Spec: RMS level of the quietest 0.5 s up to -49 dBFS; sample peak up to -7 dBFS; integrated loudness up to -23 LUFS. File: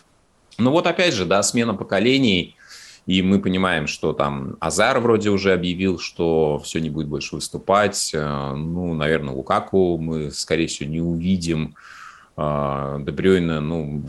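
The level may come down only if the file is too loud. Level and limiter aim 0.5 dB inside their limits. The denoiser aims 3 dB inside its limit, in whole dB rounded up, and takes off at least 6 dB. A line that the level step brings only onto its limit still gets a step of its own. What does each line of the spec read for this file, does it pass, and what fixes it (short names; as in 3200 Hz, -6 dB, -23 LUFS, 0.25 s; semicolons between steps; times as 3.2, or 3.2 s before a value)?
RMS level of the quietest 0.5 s -58 dBFS: OK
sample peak -4.5 dBFS: fail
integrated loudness -20.5 LUFS: fail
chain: gain -3 dB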